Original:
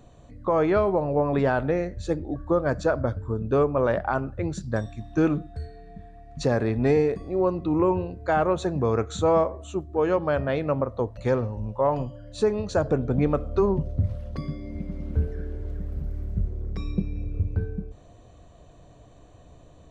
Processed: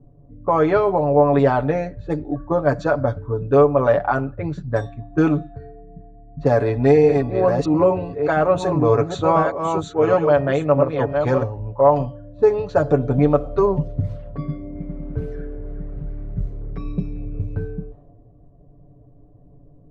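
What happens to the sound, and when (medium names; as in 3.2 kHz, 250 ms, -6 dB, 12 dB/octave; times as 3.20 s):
6.41–11.43 s: chunks repeated in reverse 621 ms, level -5 dB
whole clip: level-controlled noise filter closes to 330 Hz, open at -20 dBFS; comb 7 ms, depth 73%; dynamic bell 710 Hz, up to +5 dB, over -32 dBFS, Q 1.2; trim +1.5 dB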